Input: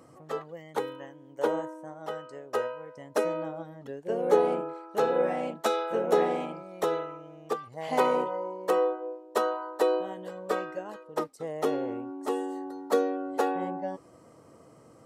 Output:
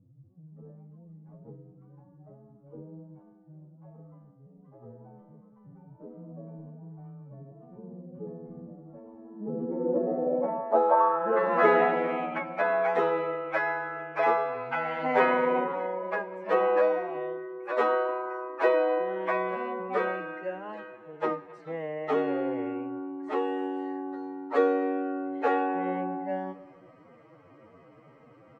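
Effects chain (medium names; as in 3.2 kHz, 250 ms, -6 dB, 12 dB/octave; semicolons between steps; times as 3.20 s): speakerphone echo 140 ms, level -23 dB; ever faster or slower copies 118 ms, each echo +5 st, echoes 3; on a send at -15 dB: reverberation RT60 0.65 s, pre-delay 4 ms; on the sum: dynamic bell 3.1 kHz, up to -4 dB, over -43 dBFS, Q 1; time stretch by phase-locked vocoder 1.9×; low-pass sweep 130 Hz -> 2.3 kHz, 9.03–11.79 s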